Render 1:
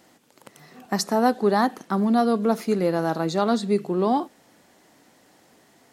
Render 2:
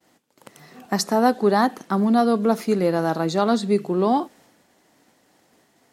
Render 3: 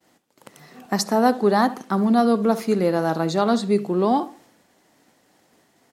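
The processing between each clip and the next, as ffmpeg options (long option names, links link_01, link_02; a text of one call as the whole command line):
ffmpeg -i in.wav -af "agate=range=-33dB:threshold=-51dB:ratio=3:detection=peak,volume=2dB" out.wav
ffmpeg -i in.wav -filter_complex "[0:a]asplit=2[link_01][link_02];[link_02]adelay=68,lowpass=frequency=1900:poles=1,volume=-15dB,asplit=2[link_03][link_04];[link_04]adelay=68,lowpass=frequency=1900:poles=1,volume=0.36,asplit=2[link_05][link_06];[link_06]adelay=68,lowpass=frequency=1900:poles=1,volume=0.36[link_07];[link_01][link_03][link_05][link_07]amix=inputs=4:normalize=0" out.wav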